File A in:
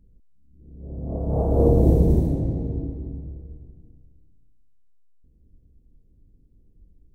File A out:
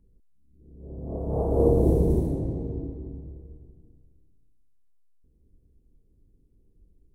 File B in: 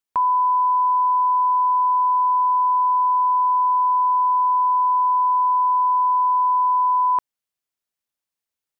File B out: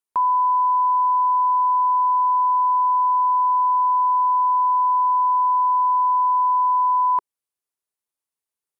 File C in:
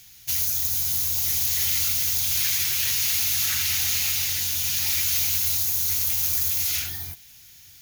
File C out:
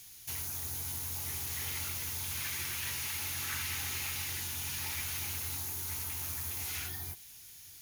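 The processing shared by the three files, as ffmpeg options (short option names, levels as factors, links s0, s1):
-filter_complex "[0:a]equalizer=f=400:t=o:w=0.67:g=6,equalizer=f=1000:t=o:w=0.67:g=5,equalizer=f=10000:t=o:w=0.67:g=8,acrossover=split=2500[s0][s1];[s1]acompressor=threshold=0.0282:ratio=4:attack=1:release=60[s2];[s0][s2]amix=inputs=2:normalize=0,volume=0.531"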